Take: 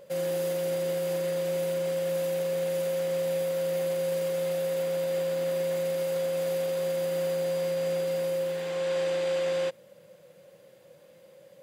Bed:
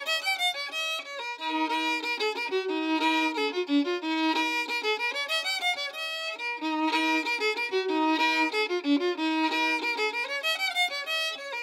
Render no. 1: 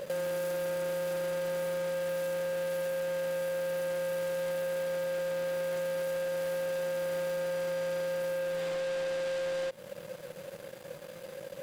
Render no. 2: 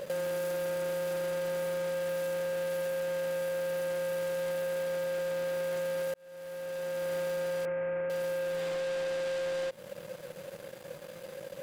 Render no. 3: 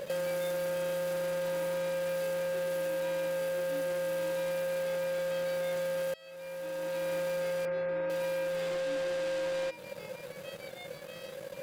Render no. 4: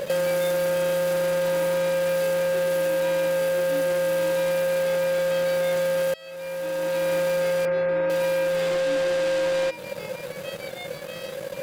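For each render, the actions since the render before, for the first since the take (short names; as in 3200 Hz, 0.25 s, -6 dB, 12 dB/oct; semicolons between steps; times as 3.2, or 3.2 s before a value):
sample leveller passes 3; compressor 6:1, threshold -33 dBFS, peak gain reduction 9.5 dB
6.14–7.11 fade in linear; 7.65–8.1 steep low-pass 2500 Hz 48 dB/oct
add bed -23 dB
gain +9.5 dB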